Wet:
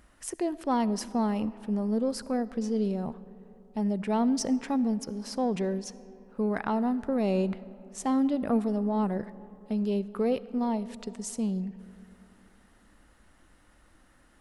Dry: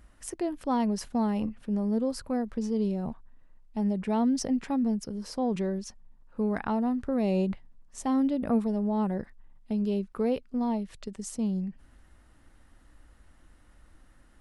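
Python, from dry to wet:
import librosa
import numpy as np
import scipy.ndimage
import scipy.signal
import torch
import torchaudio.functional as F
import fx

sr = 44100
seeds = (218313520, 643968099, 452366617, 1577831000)

p1 = fx.low_shelf(x, sr, hz=120.0, db=-10.0)
p2 = 10.0 ** (-26.0 / 20.0) * np.tanh(p1 / 10.0 ** (-26.0 / 20.0))
p3 = p1 + (p2 * 10.0 ** (-10.0 / 20.0))
y = fx.rev_freeverb(p3, sr, rt60_s=3.2, hf_ratio=0.45, predelay_ms=25, drr_db=17.0)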